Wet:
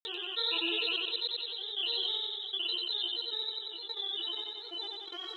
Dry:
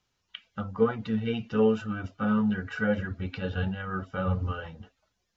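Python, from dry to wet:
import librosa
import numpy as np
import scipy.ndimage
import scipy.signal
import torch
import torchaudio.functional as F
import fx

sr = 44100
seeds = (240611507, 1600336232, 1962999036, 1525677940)

p1 = fx.vocoder_glide(x, sr, note=62, semitones=6)
p2 = fx.peak_eq(p1, sr, hz=230.0, db=-6.5, octaves=2.3)
p3 = fx.quant_float(p2, sr, bits=2)
p4 = p2 + (p3 * 10.0 ** (-9.0 / 20.0))
p5 = fx.spec_paint(p4, sr, seeds[0], shape='rise', start_s=3.2, length_s=1.65, low_hz=800.0, high_hz=3600.0, level_db=-29.0)
p6 = fx.paulstretch(p5, sr, seeds[1], factor=16.0, window_s=0.5, from_s=4.72)
p7 = fx.step_gate(p6, sr, bpm=110, pattern='...x.xx.x....xxx', floor_db=-24.0, edge_ms=4.5)
p8 = fx.granulator(p7, sr, seeds[2], grain_ms=100.0, per_s=20.0, spray_ms=100.0, spread_st=3)
p9 = p8 + fx.echo_feedback(p8, sr, ms=92, feedback_pct=33, wet_db=-7.0, dry=0)
p10 = fx.env_flatten(p9, sr, amount_pct=70)
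y = p10 * 10.0 ** (-4.0 / 20.0)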